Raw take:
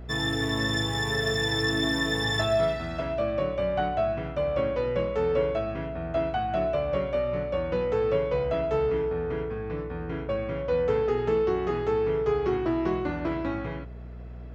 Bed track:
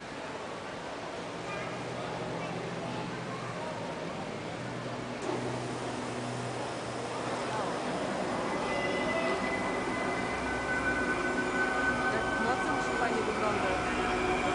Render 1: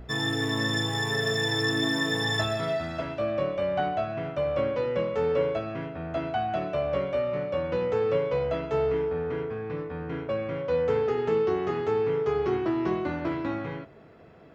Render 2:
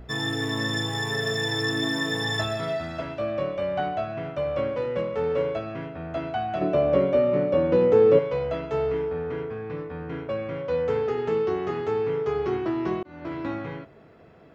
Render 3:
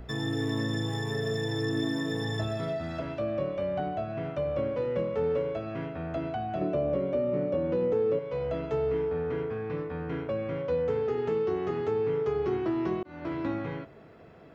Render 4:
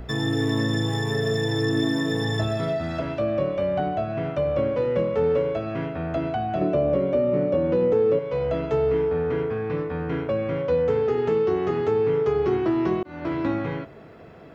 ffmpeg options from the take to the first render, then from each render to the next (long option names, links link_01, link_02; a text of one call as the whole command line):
ffmpeg -i in.wav -af "bandreject=frequency=60:width_type=h:width=4,bandreject=frequency=120:width_type=h:width=4,bandreject=frequency=180:width_type=h:width=4,bandreject=frequency=240:width_type=h:width=4,bandreject=frequency=300:width_type=h:width=4,bandreject=frequency=360:width_type=h:width=4,bandreject=frequency=420:width_type=h:width=4,bandreject=frequency=480:width_type=h:width=4,bandreject=frequency=540:width_type=h:width=4,bandreject=frequency=600:width_type=h:width=4,bandreject=frequency=660:width_type=h:width=4" out.wav
ffmpeg -i in.wav -filter_complex "[0:a]asettb=1/sr,asplit=3[link_01][link_02][link_03];[link_01]atrim=end=4.684[link_04];[link_02]atrim=start=4.68:end=5.46,asetpts=PTS-STARTPTS,afade=type=in:duration=0.004:curve=qsin,afade=type=out:start_time=0.776:duration=0.004:curve=qsin,adynamicsmooth=sensitivity=6:basefreq=3600[link_05];[link_03]atrim=start=5.456[link_06];[link_04][link_05]acrossfade=duration=0.004:curve1=hsin:curve2=qsin[link_07];[link_07][link_06]acrossfade=duration=0.004:curve1=qsin:curve2=hsin,asettb=1/sr,asplit=3[link_08][link_09][link_10];[link_08]atrim=end=6.614[link_11];[link_09]atrim=start=6.61:end=8.19,asetpts=PTS-STARTPTS,afade=type=in:duration=0.004:curve=qsin,afade=type=out:start_time=1.576:duration=0.004:curve=qsin,equalizer=frequency=300:width_type=o:width=2:gain=12.5[link_12];[link_10]atrim=start=8.186[link_13];[link_11][link_12]acrossfade=duration=0.004:curve1=hsin:curve2=qsin[link_14];[link_14][link_13]acrossfade=duration=0.004:curve1=qsin:curve2=hsin,asplit=2[link_15][link_16];[link_15]atrim=end=13.03,asetpts=PTS-STARTPTS,afade=type=out:start_time=13.026:duration=0.004:curve=hsin[link_17];[link_16]atrim=start=13.03,asetpts=PTS-STARTPTS,afade=type=in:duration=0.41[link_18];[link_17][link_18]concat=n=2:v=0:a=1" out.wav
ffmpeg -i in.wav -filter_complex "[0:a]acrossover=split=570[link_01][link_02];[link_01]alimiter=limit=-21.5dB:level=0:latency=1:release=430[link_03];[link_02]acompressor=threshold=-39dB:ratio=4[link_04];[link_03][link_04]amix=inputs=2:normalize=0" out.wav
ffmpeg -i in.wav -af "volume=6.5dB" out.wav